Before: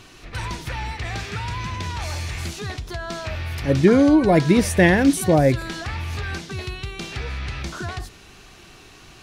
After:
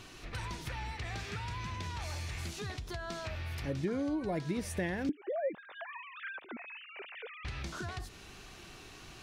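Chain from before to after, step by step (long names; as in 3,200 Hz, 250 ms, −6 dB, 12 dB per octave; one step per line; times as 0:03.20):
0:05.09–0:07.45: three sine waves on the formant tracks
downward compressor 2.5 to 1, threshold −34 dBFS, peak gain reduction 17 dB
level −5 dB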